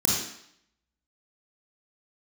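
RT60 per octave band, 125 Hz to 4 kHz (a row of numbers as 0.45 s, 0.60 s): 0.55 s, 0.70 s, 0.65 s, 0.75 s, 0.70 s, 0.70 s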